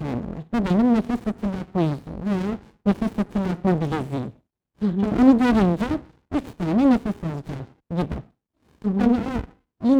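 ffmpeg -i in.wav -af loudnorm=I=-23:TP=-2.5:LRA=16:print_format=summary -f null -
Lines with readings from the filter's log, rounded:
Input Integrated:    -23.2 LUFS
Input True Peak:      -3.7 dBTP
Input LRA:             4.3 LU
Input Threshold:     -33.8 LUFS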